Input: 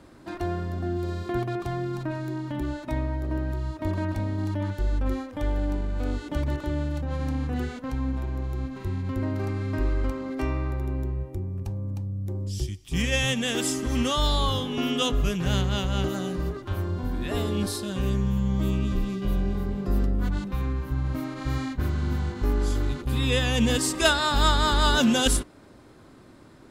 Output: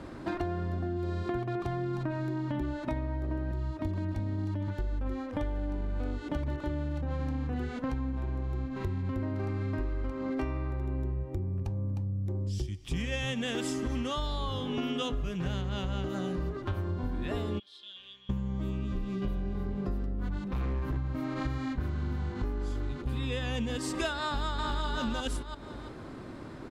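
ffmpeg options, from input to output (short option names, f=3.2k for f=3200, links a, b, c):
-filter_complex "[0:a]asettb=1/sr,asplit=3[a][b][c];[a]atrim=end=3.514[d];[b]atrim=start=3.51:end=4.68,asetpts=PTS-STARTPTS,afade=t=in:d=0.004:c=qsin,afade=t=out:st=1.166:d=0.004:c=qsin,acrossover=split=370|3000[e][f][g];[f]acompressor=threshold=-40dB:ratio=6:attack=3.2:release=140:knee=2.83:detection=peak[h];[e][h][g]amix=inputs=3:normalize=0[i];[c]atrim=start=4.676[j];[d][i]acrossfade=d=0.004:c1=hsin:c2=qsin[k];[k][j]acrossfade=d=0.004:c1=qsin:c2=hsin,asplit=3[l][m][n];[l]afade=t=out:st=17.58:d=0.02[o];[m]bandpass=f=3.3k:t=q:w=15,afade=t=in:st=17.58:d=0.02,afade=t=out:st=18.29:d=0.02[p];[n]afade=t=in:st=18.29:d=0.02[q];[o][p][q]amix=inputs=3:normalize=0,asettb=1/sr,asplit=3[r][s][t];[r]atrim=end=20.484[u];[s]atrim=start=20.48:end=20.97,asetpts=PTS-STARTPTS,afade=t=in:d=0.004:c=qsin,afade=t=out:st=0.486:d=0.004:c=qsin,asoftclip=type=hard:threshold=-28.5dB[v];[t]atrim=start=20.966[w];[u][v]acrossfade=d=0.004:c1=hsin:c2=qsin[x];[x][w]acrossfade=d=0.004:c1=qsin:c2=hsin,asplit=2[y][z];[z]afade=t=in:st=24.24:d=0.01,afade=t=out:st=24.86:d=0.01,aecho=0:1:340|680|1020:0.891251|0.133688|0.0200531[aa];[y][aa]amix=inputs=2:normalize=0,aemphasis=mode=reproduction:type=50kf,acompressor=threshold=-37dB:ratio=10,volume=7.5dB"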